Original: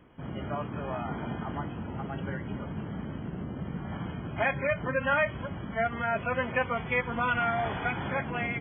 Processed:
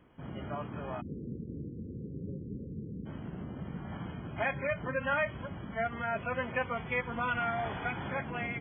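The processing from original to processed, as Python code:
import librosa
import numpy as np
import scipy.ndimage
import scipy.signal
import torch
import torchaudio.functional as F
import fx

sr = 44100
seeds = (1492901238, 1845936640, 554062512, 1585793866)

y = fx.steep_lowpass(x, sr, hz=510.0, slope=96, at=(1.0, 3.05), fade=0.02)
y = F.gain(torch.from_numpy(y), -4.5).numpy()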